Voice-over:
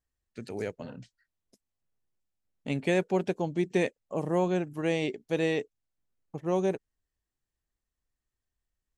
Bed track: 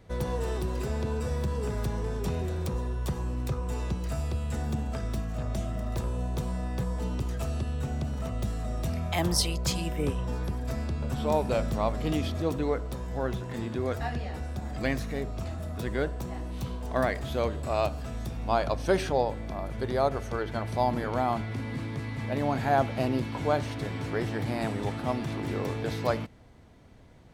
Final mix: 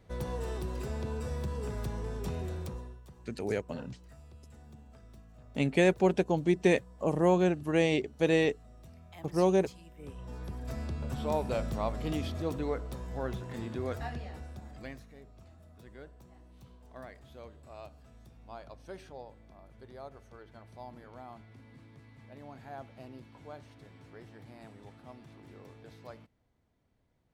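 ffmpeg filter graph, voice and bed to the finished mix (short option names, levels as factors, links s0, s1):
-filter_complex "[0:a]adelay=2900,volume=1.26[s0];[1:a]volume=3.76,afade=t=out:st=2.53:d=0.49:silence=0.149624,afade=t=in:st=9.96:d=0.88:silence=0.141254,afade=t=out:st=13.9:d=1.17:silence=0.16788[s1];[s0][s1]amix=inputs=2:normalize=0"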